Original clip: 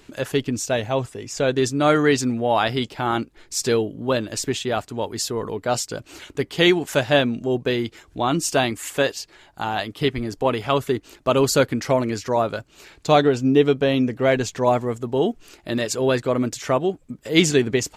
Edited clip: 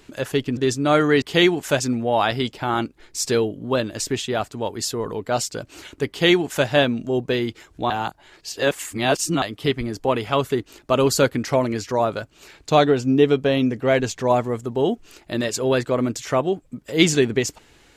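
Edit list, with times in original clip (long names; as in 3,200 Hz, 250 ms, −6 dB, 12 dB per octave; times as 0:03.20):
0:00.57–0:01.52: remove
0:06.46–0:07.04: duplicate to 0:02.17
0:08.27–0:09.79: reverse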